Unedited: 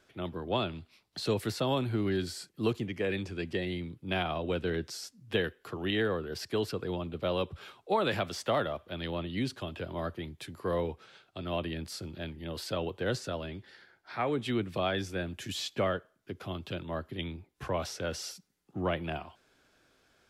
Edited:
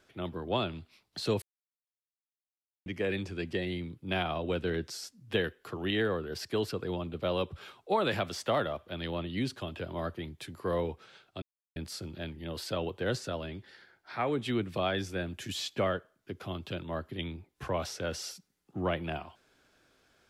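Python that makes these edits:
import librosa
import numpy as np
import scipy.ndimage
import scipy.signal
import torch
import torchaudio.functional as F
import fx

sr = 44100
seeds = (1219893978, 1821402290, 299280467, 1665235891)

y = fx.edit(x, sr, fx.silence(start_s=1.42, length_s=1.44),
    fx.silence(start_s=11.42, length_s=0.34), tone=tone)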